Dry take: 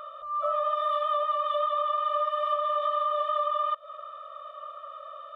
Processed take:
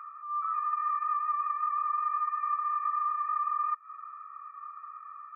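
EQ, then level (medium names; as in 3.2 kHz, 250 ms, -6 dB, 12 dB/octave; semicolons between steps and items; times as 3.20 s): brick-wall FIR band-pass 790–2500 Hz; -2.0 dB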